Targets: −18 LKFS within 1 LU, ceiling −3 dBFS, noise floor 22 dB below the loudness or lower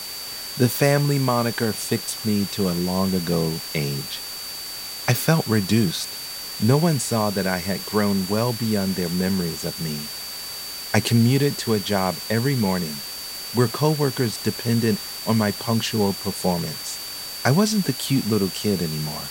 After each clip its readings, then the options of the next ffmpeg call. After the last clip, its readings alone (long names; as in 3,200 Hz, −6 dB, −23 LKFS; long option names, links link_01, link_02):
interfering tone 4,600 Hz; level of the tone −33 dBFS; background noise floor −33 dBFS; target noise floor −45 dBFS; integrated loudness −22.5 LKFS; sample peak −3.0 dBFS; target loudness −18.0 LKFS
→ -af "bandreject=frequency=4600:width=30"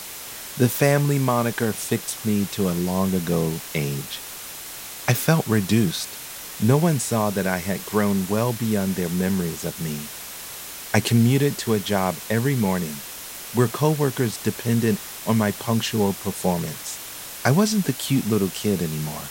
interfering tone none found; background noise floor −36 dBFS; target noise floor −45 dBFS
→ -af "afftdn=noise_reduction=9:noise_floor=-36"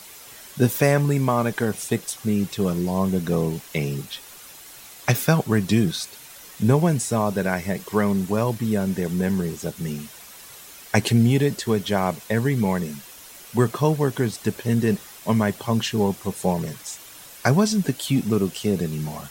background noise floor −44 dBFS; target noise floor −45 dBFS
→ -af "afftdn=noise_reduction=6:noise_floor=-44"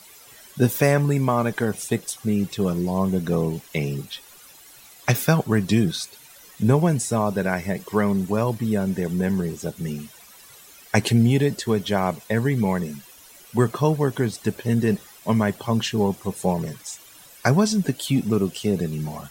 background noise floor −48 dBFS; integrated loudness −23.0 LKFS; sample peak −3.0 dBFS; target loudness −18.0 LKFS
→ -af "volume=5dB,alimiter=limit=-3dB:level=0:latency=1"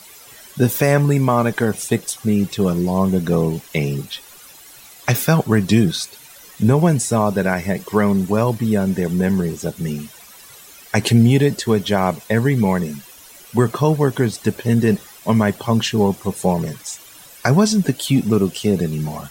integrated loudness −18.5 LKFS; sample peak −3.0 dBFS; background noise floor −43 dBFS